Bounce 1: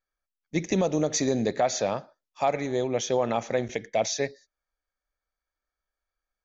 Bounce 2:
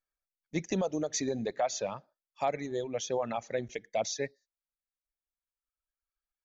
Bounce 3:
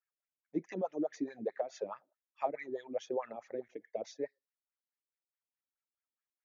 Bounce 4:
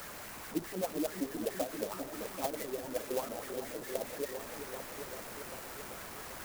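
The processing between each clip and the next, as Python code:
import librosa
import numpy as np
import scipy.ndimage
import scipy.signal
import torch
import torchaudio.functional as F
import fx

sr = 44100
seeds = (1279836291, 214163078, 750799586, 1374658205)

y1 = fx.dereverb_blind(x, sr, rt60_s=1.9)
y1 = F.gain(torch.from_numpy(y1), -5.5).numpy()
y2 = scipy.signal.sosfilt(scipy.signal.cheby1(6, 3, 7100.0, 'lowpass', fs=sr, output='sos'), y1)
y2 = fx.wah_lfo(y2, sr, hz=4.7, low_hz=290.0, high_hz=2100.0, q=3.6)
y2 = F.gain(torch.from_numpy(y2), 5.0).numpy()
y3 = fx.delta_mod(y2, sr, bps=16000, step_db=-39.0)
y3 = fx.echo_opening(y3, sr, ms=392, hz=400, octaves=1, feedback_pct=70, wet_db=-6)
y3 = fx.clock_jitter(y3, sr, seeds[0], jitter_ms=0.089)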